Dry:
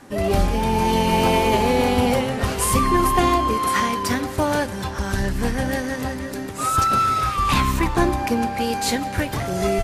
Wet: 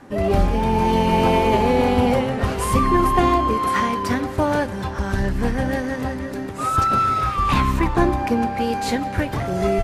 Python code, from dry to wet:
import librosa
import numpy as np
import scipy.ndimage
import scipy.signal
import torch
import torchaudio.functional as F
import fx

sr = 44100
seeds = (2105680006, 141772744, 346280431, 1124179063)

y = fx.high_shelf(x, sr, hz=3500.0, db=-11.0)
y = y * librosa.db_to_amplitude(1.5)